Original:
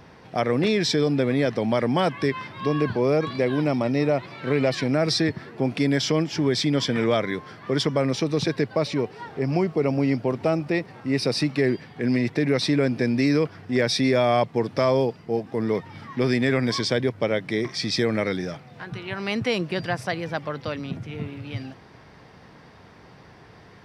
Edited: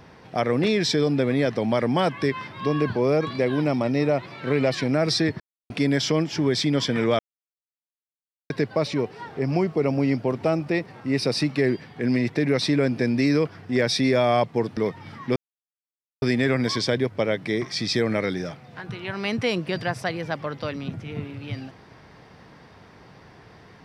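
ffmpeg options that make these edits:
-filter_complex "[0:a]asplit=7[s0][s1][s2][s3][s4][s5][s6];[s0]atrim=end=5.4,asetpts=PTS-STARTPTS,afade=t=out:st=5.396:d=0.004:c=hsin[s7];[s1]atrim=start=5.4:end=5.7,asetpts=PTS-STARTPTS,volume=0[s8];[s2]atrim=start=5.7:end=7.19,asetpts=PTS-STARTPTS,afade=t=in:d=0.004:c=hsin,afade=t=out:st=1.486:d=0.004:c=hsin[s9];[s3]atrim=start=7.19:end=8.5,asetpts=PTS-STARTPTS,volume=0[s10];[s4]atrim=start=8.5:end=14.772,asetpts=PTS-STARTPTS,afade=t=in:d=0.004:c=hsin[s11];[s5]atrim=start=15.658:end=16.25,asetpts=PTS-STARTPTS,afade=t=out:st=0.588:d=0.004:c=hsin,apad=pad_dur=0.86[s12];[s6]atrim=start=16.25,asetpts=PTS-STARTPTS,afade=t=in:d=0.004:c=hsin[s13];[s7][s8][s9][s10][s11]concat=n=5:v=0:a=1[s14];[s12][s13]concat=n=2:v=0:a=1[s15];[s14][s15]acrossfade=d=0.004:c1=hsin:c2=hsin"

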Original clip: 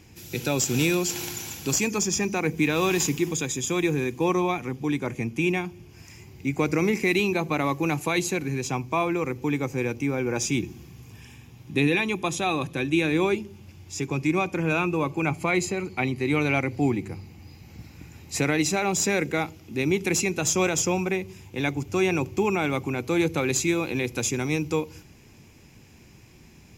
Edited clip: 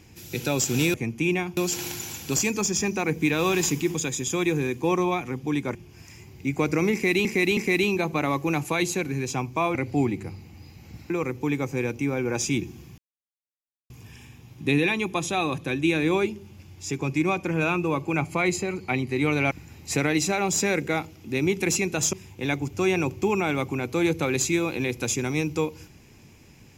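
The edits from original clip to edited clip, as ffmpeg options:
-filter_complex "[0:a]asplit=11[s0][s1][s2][s3][s4][s5][s6][s7][s8][s9][s10];[s0]atrim=end=0.942[s11];[s1]atrim=start=5.118:end=5.752[s12];[s2]atrim=start=0.938:end=5.122[s13];[s3]atrim=start=5.748:end=7.252[s14];[s4]atrim=start=6.928:end=7.252[s15];[s5]atrim=start=6.928:end=9.112[s16];[s6]atrim=start=16.598:end=17.952[s17];[s7]atrim=start=9.108:end=10.99,asetpts=PTS-STARTPTS,afade=t=out:st=1.878:d=0.004:c=hsin,apad=pad_dur=0.92[s18];[s8]atrim=start=10.99:end=16.602,asetpts=PTS-STARTPTS,afade=t=in:d=0.004:c=hsin[s19];[s9]atrim=start=17.948:end=20.572[s20];[s10]atrim=start=21.278[s21];[s11][s12]acrossfade=d=0.004:c1=hsin:c2=hsin[s22];[s22][s13]acrossfade=d=0.004:c1=hsin:c2=hsin[s23];[s23][s14]acrossfade=d=0.004:c1=hsin:c2=hsin[s24];[s24][s15]acrossfade=d=0.004:c1=hsin:c2=hsin[s25];[s25][s16]acrossfade=d=0.004:c1=hsin:c2=hsin[s26];[s26][s17]acrossfade=d=0.004:c1=hsin:c2=hsin[s27];[s18][s19]concat=n=2:v=0:a=1[s28];[s27][s28]acrossfade=d=0.004:c1=hsin:c2=hsin[s29];[s29][s20]acrossfade=d=0.004:c1=hsin:c2=hsin[s30];[s30][s21]acrossfade=d=0.004:c1=hsin:c2=hsin"

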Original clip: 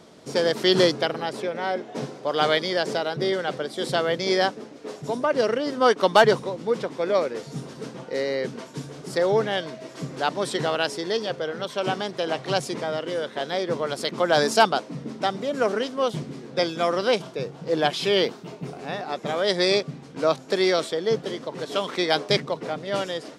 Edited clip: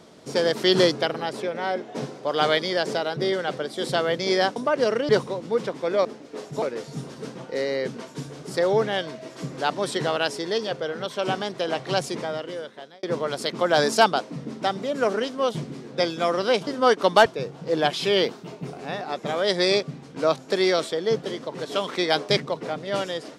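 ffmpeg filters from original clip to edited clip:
-filter_complex "[0:a]asplit=8[s0][s1][s2][s3][s4][s5][s6][s7];[s0]atrim=end=4.562[s8];[s1]atrim=start=5.128:end=5.662[s9];[s2]atrim=start=6.248:end=7.212[s10];[s3]atrim=start=4.558:end=5.132[s11];[s4]atrim=start=7.208:end=13.62,asetpts=PTS-STARTPTS,afade=t=out:st=5.542:d=0.87[s12];[s5]atrim=start=13.62:end=17.262,asetpts=PTS-STARTPTS,afade=t=in:d=0.004:c=hsin[s13];[s6]atrim=start=5.658:end=6.252[s14];[s7]atrim=start=17.258[s15];[s8][s9]acrossfade=d=0.004:c1=hsin:c2=hsin[s16];[s16][s10]acrossfade=d=0.004:c1=hsin:c2=hsin[s17];[s17][s11]acrossfade=d=0.004:c1=hsin:c2=hsin[s18];[s12][s13]concat=n=2:v=0:a=1[s19];[s18][s19]acrossfade=d=0.004:c1=hsin:c2=hsin[s20];[s20][s14]acrossfade=d=0.004:c1=hsin:c2=hsin[s21];[s21][s15]acrossfade=d=0.004:c1=hsin:c2=hsin"

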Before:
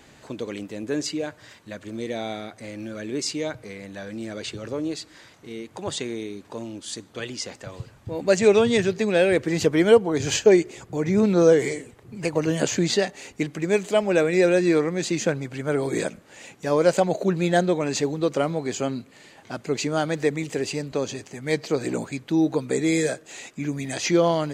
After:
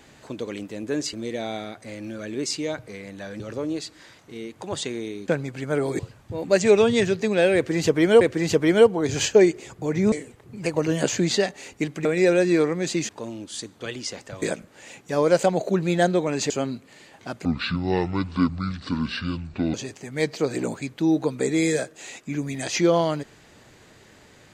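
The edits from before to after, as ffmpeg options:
-filter_complex "[0:a]asplit=13[s0][s1][s2][s3][s4][s5][s6][s7][s8][s9][s10][s11][s12];[s0]atrim=end=1.132[s13];[s1]atrim=start=1.888:end=4.162[s14];[s2]atrim=start=4.548:end=6.432[s15];[s3]atrim=start=15.248:end=15.962[s16];[s4]atrim=start=7.758:end=9.982[s17];[s5]atrim=start=9.318:end=11.232[s18];[s6]atrim=start=11.708:end=13.642[s19];[s7]atrim=start=14.208:end=15.252[s20];[s8]atrim=start=6.428:end=7.762[s21];[s9]atrim=start=15.958:end=18.042[s22];[s10]atrim=start=18.738:end=19.694[s23];[s11]atrim=start=19.69:end=21.04,asetpts=PTS-STARTPTS,asetrate=26019,aresample=44100[s24];[s12]atrim=start=21.036[s25];[s13][s14]acrossfade=d=0.004:c1=hsin:c2=hsin[s26];[s26][s15]acrossfade=d=0.004:c1=hsin:c2=hsin[s27];[s27][s16]acrossfade=d=0.004:c1=hsin:c2=hsin[s28];[s28][s17]acrossfade=d=0.004:c1=hsin:c2=hsin[s29];[s29][s18]acrossfade=d=0.004:c1=hsin:c2=hsin[s30];[s30][s19]acrossfade=d=0.004:c1=hsin:c2=hsin[s31];[s31][s20]acrossfade=d=0.004:c1=hsin:c2=hsin[s32];[s32][s21]acrossfade=d=0.004:c1=hsin:c2=hsin[s33];[s33][s22]acrossfade=d=0.004:c1=hsin:c2=hsin[s34];[s34][s23]acrossfade=d=0.004:c1=hsin:c2=hsin[s35];[s35][s24]acrossfade=d=0.004:c1=hsin:c2=hsin[s36];[s36][s25]acrossfade=d=0.004:c1=hsin:c2=hsin"

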